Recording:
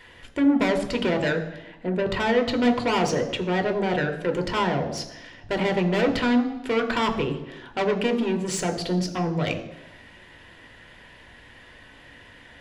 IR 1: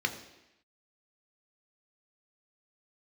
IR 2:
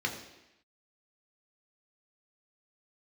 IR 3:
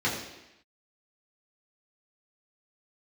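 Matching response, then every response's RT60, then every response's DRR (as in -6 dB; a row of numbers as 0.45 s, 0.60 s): 1; 0.90 s, 0.90 s, 0.90 s; 5.0 dB, 0.5 dB, -7.0 dB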